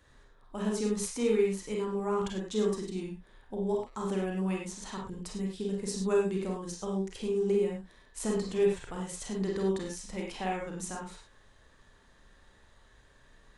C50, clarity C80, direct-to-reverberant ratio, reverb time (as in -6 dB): 3.0 dB, 7.5 dB, -1.5 dB, not exponential